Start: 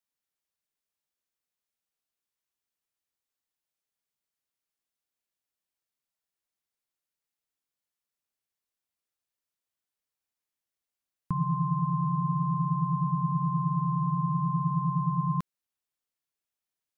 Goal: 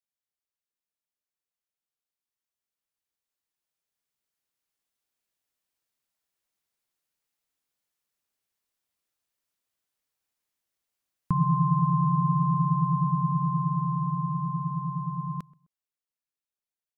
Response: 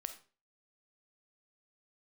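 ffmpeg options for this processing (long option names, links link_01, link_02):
-filter_complex "[0:a]dynaudnorm=framelen=450:gausssize=17:maxgain=12dB,asplit=2[link_01][link_02];[link_02]adelay=129,lowpass=frequency=1100:poles=1,volume=-23dB,asplit=2[link_03][link_04];[link_04]adelay=129,lowpass=frequency=1100:poles=1,volume=0.34[link_05];[link_01][link_03][link_05]amix=inputs=3:normalize=0,volume=-7dB"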